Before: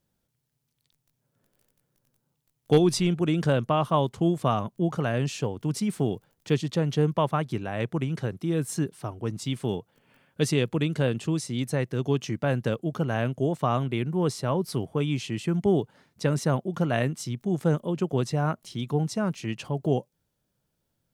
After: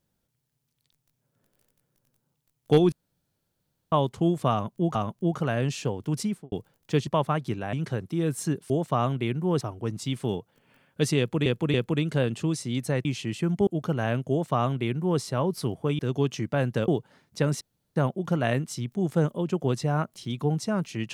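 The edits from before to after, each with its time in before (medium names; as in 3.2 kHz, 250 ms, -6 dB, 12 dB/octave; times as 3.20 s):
2.92–3.92 s: room tone
4.52–4.95 s: loop, 2 plays
5.78–6.09 s: studio fade out
6.64–7.11 s: delete
7.77–8.04 s: delete
10.58–10.86 s: loop, 3 plays
11.89–12.78 s: swap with 15.10–15.72 s
13.41–14.32 s: copy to 9.01 s
16.45 s: insert room tone 0.35 s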